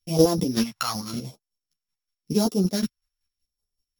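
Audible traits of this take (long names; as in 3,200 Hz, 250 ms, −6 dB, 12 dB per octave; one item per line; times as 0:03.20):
a buzz of ramps at a fixed pitch in blocks of 8 samples
phaser sweep stages 2, 0.89 Hz, lowest notch 350–1,900 Hz
chopped level 5.3 Hz, depth 60%, duty 30%
a shimmering, thickened sound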